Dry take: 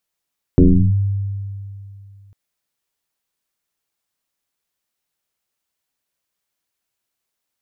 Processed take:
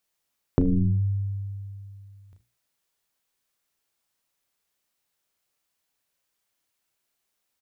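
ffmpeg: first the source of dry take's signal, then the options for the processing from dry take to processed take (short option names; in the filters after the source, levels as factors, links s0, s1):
-f lavfi -i "aevalsrc='0.562*pow(10,-3*t/2.67)*sin(2*PI*99.2*t+3.3*clip(1-t/0.36,0,1)*sin(2*PI*0.88*99.2*t))':d=1.75:s=44100"
-af "aecho=1:1:34|76:0.531|0.15,acompressor=threshold=0.126:ratio=6,bandreject=f=60:t=h:w=6,bandreject=f=120:t=h:w=6,bandreject=f=180:t=h:w=6,bandreject=f=240:t=h:w=6,bandreject=f=300:t=h:w=6,bandreject=f=360:t=h:w=6"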